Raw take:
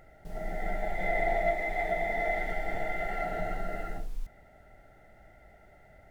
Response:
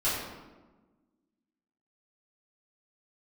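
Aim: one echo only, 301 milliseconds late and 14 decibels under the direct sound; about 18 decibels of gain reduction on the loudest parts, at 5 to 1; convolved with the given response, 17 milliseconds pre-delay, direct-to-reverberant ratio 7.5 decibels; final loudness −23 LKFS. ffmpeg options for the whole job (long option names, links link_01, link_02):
-filter_complex "[0:a]acompressor=threshold=-45dB:ratio=5,aecho=1:1:301:0.2,asplit=2[link_01][link_02];[1:a]atrim=start_sample=2205,adelay=17[link_03];[link_02][link_03]afir=irnorm=-1:irlink=0,volume=-18dB[link_04];[link_01][link_04]amix=inputs=2:normalize=0,volume=26dB"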